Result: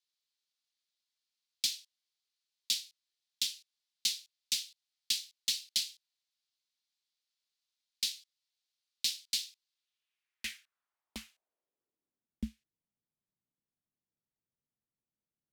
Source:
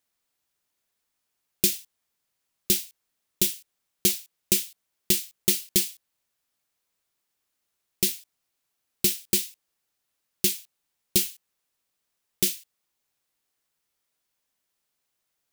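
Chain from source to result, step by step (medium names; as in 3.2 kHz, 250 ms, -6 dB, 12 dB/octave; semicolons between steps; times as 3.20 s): band-pass sweep 4.3 kHz -> 300 Hz, 9.69–12.41 s; frequency shift -140 Hz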